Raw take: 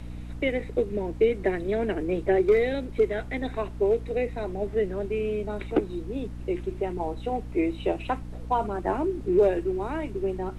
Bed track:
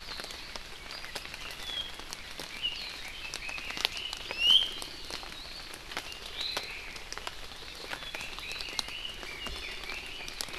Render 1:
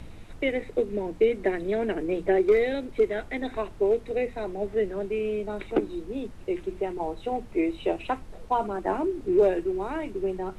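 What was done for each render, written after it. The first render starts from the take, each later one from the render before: hum notches 60/120/180/240/300 Hz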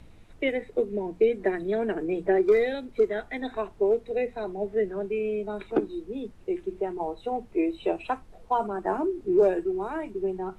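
noise print and reduce 8 dB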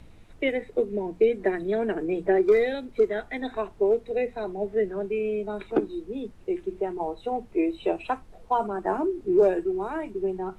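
trim +1 dB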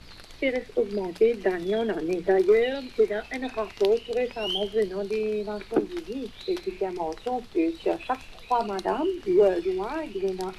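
add bed track -8 dB

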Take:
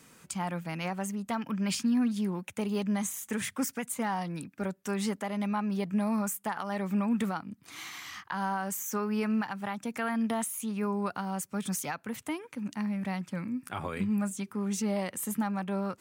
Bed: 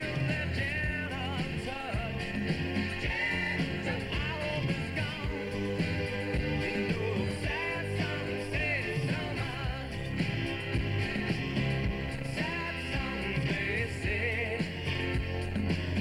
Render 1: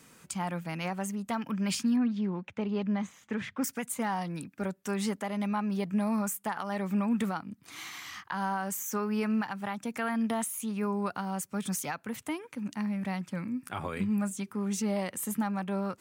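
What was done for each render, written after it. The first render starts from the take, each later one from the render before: 1.96–3.64 s: distance through air 220 m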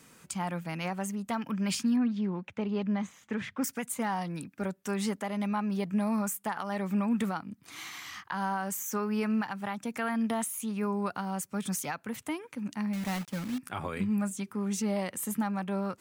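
12.93–13.60 s: block-companded coder 3-bit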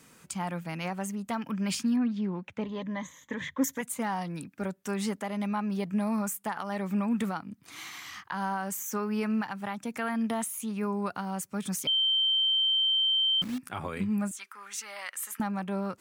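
2.63–3.81 s: rippled EQ curve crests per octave 1.1, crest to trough 12 dB; 11.87–13.42 s: bleep 3.12 kHz -22.5 dBFS; 14.31–15.40 s: resonant high-pass 1.4 kHz, resonance Q 1.8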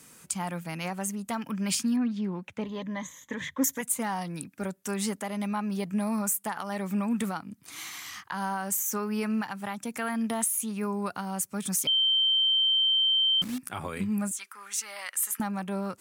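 peaking EQ 11 kHz +9 dB 1.6 oct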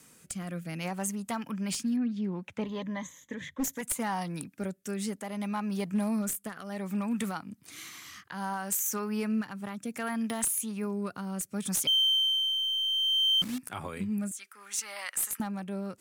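one-sided wavefolder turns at -21.5 dBFS; rotary cabinet horn 0.65 Hz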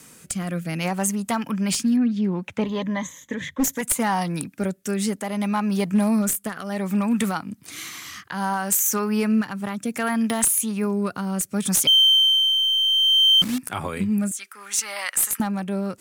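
trim +9.5 dB

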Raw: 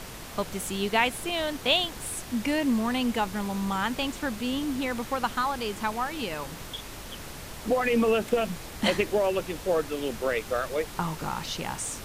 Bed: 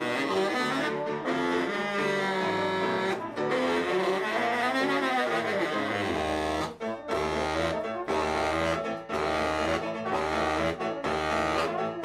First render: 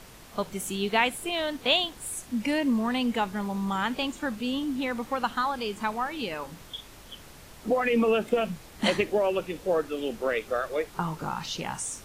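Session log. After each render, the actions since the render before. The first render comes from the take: noise print and reduce 8 dB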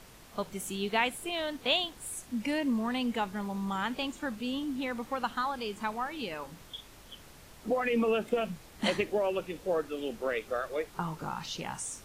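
trim -4.5 dB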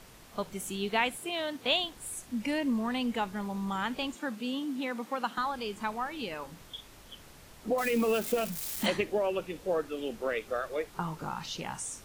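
1.17–1.65 s: high-pass 88 Hz 24 dB/octave; 4.15–5.38 s: steep high-pass 160 Hz; 7.78–8.86 s: zero-crossing glitches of -29 dBFS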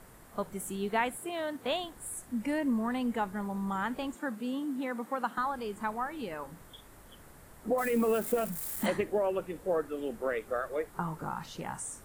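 high-order bell 3.9 kHz -9.5 dB

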